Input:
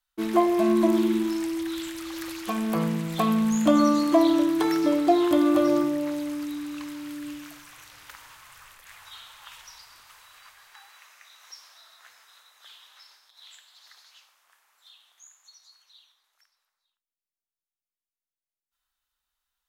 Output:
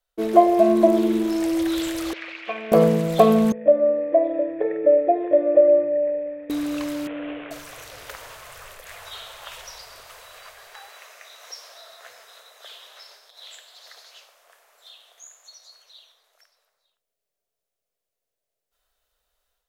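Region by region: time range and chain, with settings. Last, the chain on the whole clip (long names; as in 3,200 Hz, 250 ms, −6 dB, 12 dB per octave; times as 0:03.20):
0:02.13–0:02.72: transistor ladder low-pass 2,700 Hz, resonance 55% + spectral tilt +4.5 dB per octave
0:03.52–0:06.50: mu-law and A-law mismatch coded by A + formant resonators in series e
0:07.07–0:07.51: variable-slope delta modulation 16 kbit/s + low-shelf EQ 240 Hz −10.5 dB
whole clip: flat-topped bell 530 Hz +14 dB 1 octave; automatic gain control gain up to 7.5 dB; low-shelf EQ 140 Hz +6 dB; level −1 dB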